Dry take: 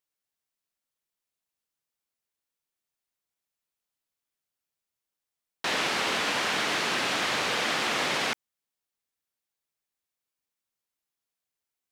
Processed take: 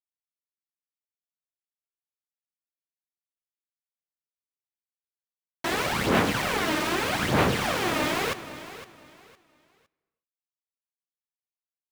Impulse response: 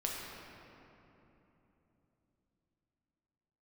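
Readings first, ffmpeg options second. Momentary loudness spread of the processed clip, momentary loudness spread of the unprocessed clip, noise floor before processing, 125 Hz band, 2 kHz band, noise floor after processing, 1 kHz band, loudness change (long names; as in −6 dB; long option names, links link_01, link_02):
15 LU, 4 LU, below −85 dBFS, +14.0 dB, −0.5 dB, below −85 dBFS, +2.5 dB, +1.0 dB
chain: -filter_complex "[0:a]aemphasis=mode=reproduction:type=riaa,aphaser=in_gain=1:out_gain=1:delay=3.3:decay=0.63:speed=0.81:type=sinusoidal,aeval=exprs='val(0)*gte(abs(val(0)),0.0376)':channel_layout=same,aecho=1:1:510|1020|1530:0.188|0.049|0.0127,asplit=2[link_01][link_02];[1:a]atrim=start_sample=2205,afade=type=out:start_time=0.42:duration=0.01,atrim=end_sample=18963,adelay=15[link_03];[link_02][link_03]afir=irnorm=-1:irlink=0,volume=-20dB[link_04];[link_01][link_04]amix=inputs=2:normalize=0"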